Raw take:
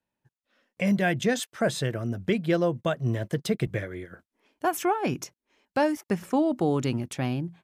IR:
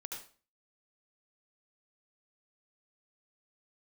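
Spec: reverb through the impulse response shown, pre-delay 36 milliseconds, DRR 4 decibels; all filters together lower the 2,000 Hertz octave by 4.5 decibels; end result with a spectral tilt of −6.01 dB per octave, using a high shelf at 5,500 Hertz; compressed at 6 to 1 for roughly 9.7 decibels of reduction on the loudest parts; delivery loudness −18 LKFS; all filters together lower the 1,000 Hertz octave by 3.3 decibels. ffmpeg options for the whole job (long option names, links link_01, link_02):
-filter_complex "[0:a]equalizer=frequency=1000:width_type=o:gain=-4,equalizer=frequency=2000:width_type=o:gain=-4,highshelf=frequency=5500:gain=-3,acompressor=threshold=-31dB:ratio=6,asplit=2[link_01][link_02];[1:a]atrim=start_sample=2205,adelay=36[link_03];[link_02][link_03]afir=irnorm=-1:irlink=0,volume=-2dB[link_04];[link_01][link_04]amix=inputs=2:normalize=0,volume=17dB"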